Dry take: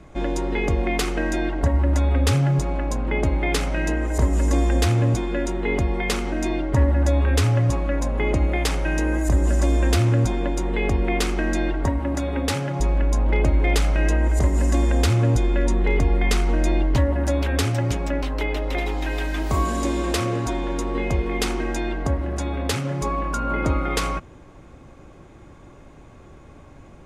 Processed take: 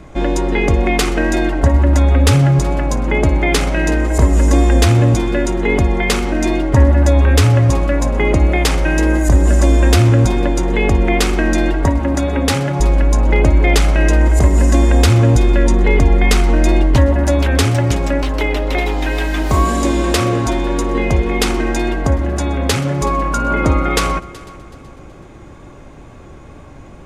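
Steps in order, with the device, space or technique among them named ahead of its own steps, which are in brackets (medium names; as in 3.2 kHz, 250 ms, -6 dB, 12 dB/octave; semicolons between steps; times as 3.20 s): multi-head tape echo (multi-head delay 125 ms, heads first and third, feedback 48%, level -22 dB; wow and flutter 21 cents); trim +8 dB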